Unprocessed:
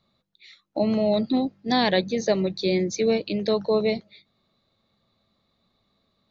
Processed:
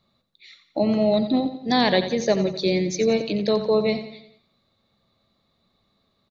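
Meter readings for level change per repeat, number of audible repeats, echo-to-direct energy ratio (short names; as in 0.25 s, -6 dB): -6.5 dB, 4, -10.0 dB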